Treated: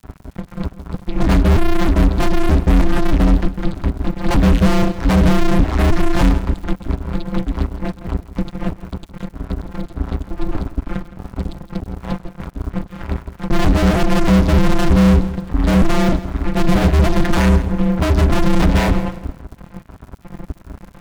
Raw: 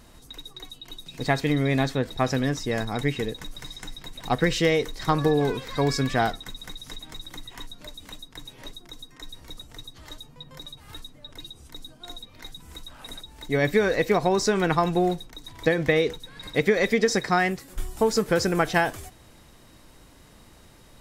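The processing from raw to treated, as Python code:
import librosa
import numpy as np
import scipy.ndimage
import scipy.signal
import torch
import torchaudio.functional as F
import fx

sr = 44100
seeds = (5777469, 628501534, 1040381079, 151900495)

p1 = fx.vocoder_arp(x, sr, chord='bare fifth', root=46, every_ms=310)
p2 = scipy.signal.sosfilt(scipy.signal.butter(2, 1500.0, 'lowpass', fs=sr, output='sos'), p1)
p3 = fx.fuzz(p2, sr, gain_db=42.0, gate_db=-52.0)
p4 = fx.dmg_crackle(p3, sr, seeds[0], per_s=230.0, level_db=-34.0)
p5 = np.sign(p4) * np.maximum(np.abs(p4) - 10.0 ** (-41.0 / 20.0), 0.0)
p6 = p5 * np.sin(2.0 * np.pi * 160.0 * np.arange(len(p5)) / sr)
p7 = fx.low_shelf_res(p6, sr, hz=250.0, db=10.0, q=1.5)
y = p7 + fx.echo_feedback(p7, sr, ms=165, feedback_pct=32, wet_db=-15.5, dry=0)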